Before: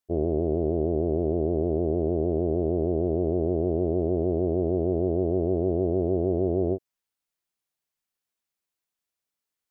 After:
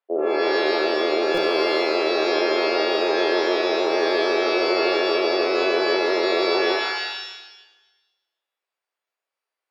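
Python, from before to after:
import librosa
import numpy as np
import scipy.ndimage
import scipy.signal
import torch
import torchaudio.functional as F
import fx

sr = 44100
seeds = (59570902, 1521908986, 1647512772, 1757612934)

p1 = scipy.signal.sosfilt(scipy.signal.butter(4, 430.0, 'highpass', fs=sr, output='sos'), x)
p2 = fx.air_absorb(p1, sr, metres=460.0)
p3 = p2 + fx.echo_tape(p2, sr, ms=87, feedback_pct=74, wet_db=-13.5, lp_hz=1000.0, drive_db=26.0, wow_cents=8, dry=0)
p4 = fx.buffer_glitch(p3, sr, at_s=(1.34,), block=256, repeats=5)
p5 = fx.rev_shimmer(p4, sr, seeds[0], rt60_s=1.0, semitones=12, shimmer_db=-2, drr_db=5.5)
y = p5 * librosa.db_to_amplitude(9.0)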